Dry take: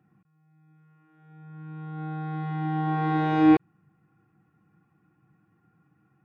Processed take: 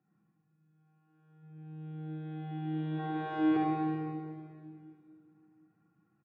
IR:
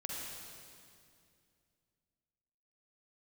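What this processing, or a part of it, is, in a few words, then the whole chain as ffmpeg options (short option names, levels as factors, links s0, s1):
swimming-pool hall: -filter_complex "[0:a]highpass=140,asplit=3[s0][s1][s2];[s0]afade=t=out:st=1.42:d=0.02[s3];[s1]aecho=1:1:6:0.81,afade=t=in:st=1.42:d=0.02,afade=t=out:st=2.98:d=0.02[s4];[s2]afade=t=in:st=2.98:d=0.02[s5];[s3][s4][s5]amix=inputs=3:normalize=0[s6];[1:a]atrim=start_sample=2205[s7];[s6][s7]afir=irnorm=-1:irlink=0,highshelf=f=3500:g=-8,volume=0.422"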